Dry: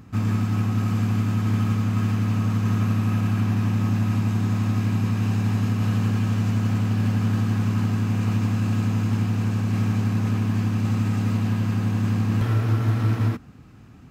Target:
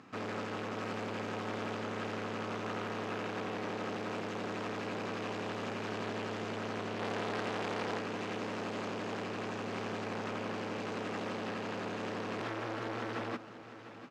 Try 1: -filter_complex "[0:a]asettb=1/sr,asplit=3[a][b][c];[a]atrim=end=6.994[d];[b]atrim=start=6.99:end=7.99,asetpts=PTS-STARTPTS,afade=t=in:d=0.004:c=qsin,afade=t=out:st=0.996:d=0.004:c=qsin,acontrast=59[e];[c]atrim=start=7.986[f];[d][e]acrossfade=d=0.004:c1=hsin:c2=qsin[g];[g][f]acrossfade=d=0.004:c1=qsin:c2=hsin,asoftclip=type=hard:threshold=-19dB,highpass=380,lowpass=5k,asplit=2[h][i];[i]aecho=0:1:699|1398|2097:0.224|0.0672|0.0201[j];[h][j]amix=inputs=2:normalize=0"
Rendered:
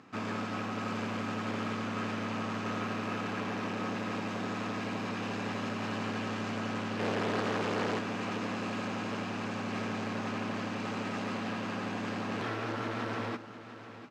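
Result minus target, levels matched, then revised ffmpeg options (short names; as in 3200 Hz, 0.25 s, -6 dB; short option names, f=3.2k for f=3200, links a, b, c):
hard clip: distortion -5 dB
-filter_complex "[0:a]asettb=1/sr,asplit=3[a][b][c];[a]atrim=end=6.994[d];[b]atrim=start=6.99:end=7.99,asetpts=PTS-STARTPTS,afade=t=in:d=0.004:c=qsin,afade=t=out:st=0.996:d=0.004:c=qsin,acontrast=59[e];[c]atrim=start=7.986[f];[d][e]acrossfade=d=0.004:c1=hsin:c2=qsin[g];[g][f]acrossfade=d=0.004:c1=qsin:c2=hsin,asoftclip=type=hard:threshold=-26dB,highpass=380,lowpass=5k,asplit=2[h][i];[i]aecho=0:1:699|1398|2097:0.224|0.0672|0.0201[j];[h][j]amix=inputs=2:normalize=0"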